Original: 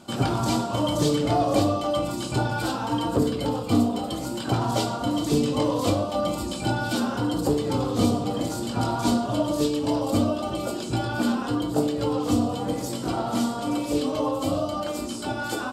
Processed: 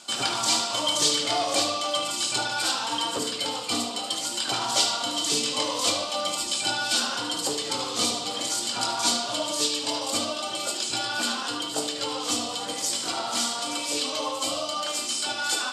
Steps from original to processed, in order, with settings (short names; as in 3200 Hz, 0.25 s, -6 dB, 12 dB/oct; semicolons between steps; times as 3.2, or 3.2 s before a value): weighting filter ITU-R 468; on a send: narrowing echo 74 ms, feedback 68%, band-pass 2900 Hz, level -7 dB; on the sum: gain -1 dB